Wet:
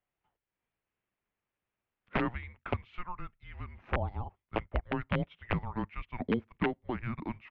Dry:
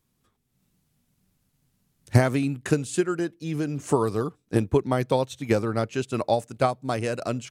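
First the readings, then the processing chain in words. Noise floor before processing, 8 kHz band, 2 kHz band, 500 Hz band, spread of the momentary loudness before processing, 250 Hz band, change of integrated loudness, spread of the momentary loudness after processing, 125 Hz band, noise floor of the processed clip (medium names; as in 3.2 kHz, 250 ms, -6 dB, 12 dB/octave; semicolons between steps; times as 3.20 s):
-73 dBFS, under -40 dB, -5.0 dB, -14.5 dB, 6 LU, -10.0 dB, -10.5 dB, 11 LU, -11.5 dB, under -85 dBFS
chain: integer overflow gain 10.5 dB; mistuned SSB -360 Hz 410–3100 Hz; trim -6.5 dB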